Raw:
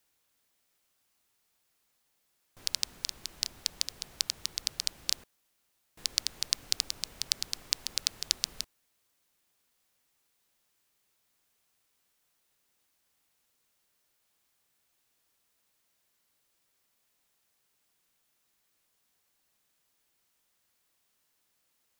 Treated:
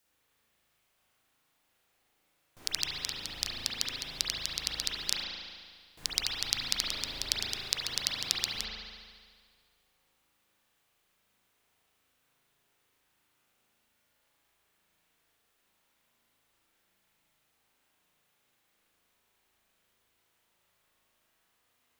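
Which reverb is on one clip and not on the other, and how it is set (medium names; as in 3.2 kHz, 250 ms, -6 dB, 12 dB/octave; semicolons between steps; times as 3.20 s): spring tank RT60 1.8 s, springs 37 ms, chirp 35 ms, DRR -6.5 dB; trim -1.5 dB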